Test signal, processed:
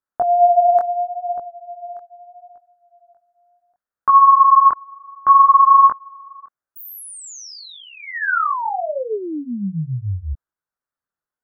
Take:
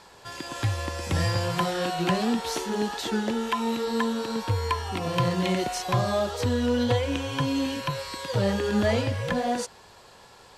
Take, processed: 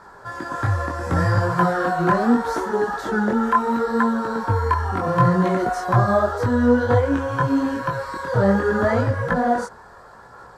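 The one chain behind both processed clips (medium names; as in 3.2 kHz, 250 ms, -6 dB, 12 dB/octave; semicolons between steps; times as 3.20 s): resonant high shelf 2 kHz -10.5 dB, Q 3; chorus voices 2, 0.72 Hz, delay 21 ms, depth 4.8 ms; trim +8.5 dB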